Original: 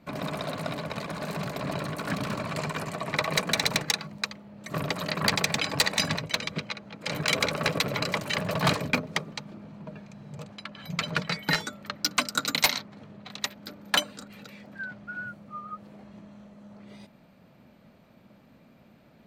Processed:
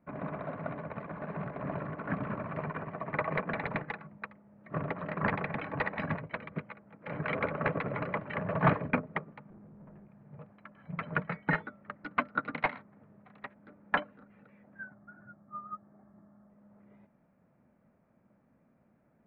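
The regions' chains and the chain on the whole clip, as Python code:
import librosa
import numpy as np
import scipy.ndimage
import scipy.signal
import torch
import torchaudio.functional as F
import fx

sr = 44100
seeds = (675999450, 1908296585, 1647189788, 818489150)

y = fx.chain(x, sr, fx.low_shelf(hz=350.0, db=10.0),
    fx.tube_stage(drive_db=40.0, bias=0.65), at=(9.5, 10.08))
y = fx.chain(y, sr, fx.high_shelf_res(hz=2100.0, db=-12.0, q=1.5),
    fx.notch_comb(f0_hz=490.0), at=(14.83, 16.5))
y = scipy.signal.sosfilt(scipy.signal.cheby2(4, 60, 6200.0, 'lowpass', fs=sr, output='sos'), y)
y = fx.upward_expand(y, sr, threshold_db=-46.0, expansion=1.5)
y = F.gain(torch.from_numpy(y), 1.0).numpy()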